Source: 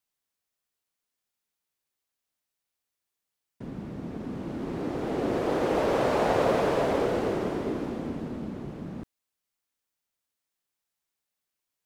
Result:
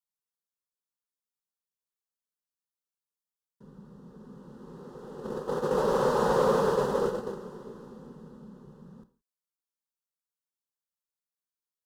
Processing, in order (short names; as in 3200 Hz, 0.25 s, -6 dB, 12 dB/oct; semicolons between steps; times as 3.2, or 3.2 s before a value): gate -25 dBFS, range -13 dB; fixed phaser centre 450 Hz, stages 8; non-linear reverb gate 0.19 s falling, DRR 10.5 dB; in parallel at -8.5 dB: overloaded stage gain 21.5 dB